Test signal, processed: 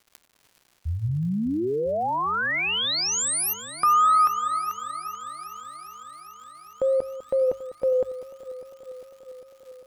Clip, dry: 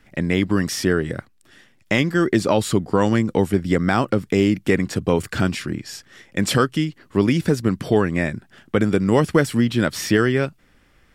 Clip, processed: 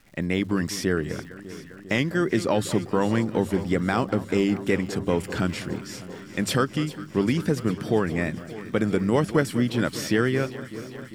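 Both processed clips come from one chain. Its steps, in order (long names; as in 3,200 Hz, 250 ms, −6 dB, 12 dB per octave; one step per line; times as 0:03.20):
mains-hum notches 50/100 Hz
tape wow and flutter 44 cents
surface crackle 240 per second −40 dBFS
delay that swaps between a low-pass and a high-pass 200 ms, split 1,300 Hz, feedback 86%, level −14 dB
level −5 dB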